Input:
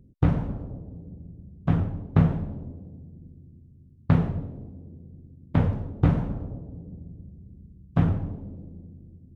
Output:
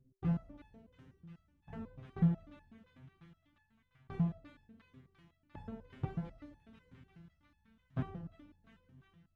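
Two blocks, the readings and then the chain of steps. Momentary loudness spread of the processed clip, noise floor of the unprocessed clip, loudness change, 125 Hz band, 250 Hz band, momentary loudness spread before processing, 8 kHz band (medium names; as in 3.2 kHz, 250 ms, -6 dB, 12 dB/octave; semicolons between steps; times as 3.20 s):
24 LU, -52 dBFS, -13.0 dB, -15.0 dB, -12.0 dB, 21 LU, no reading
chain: feedback echo behind a high-pass 349 ms, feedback 75%, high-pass 2.1 kHz, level -4.5 dB; resonator arpeggio 8.1 Hz 130–870 Hz; trim -2.5 dB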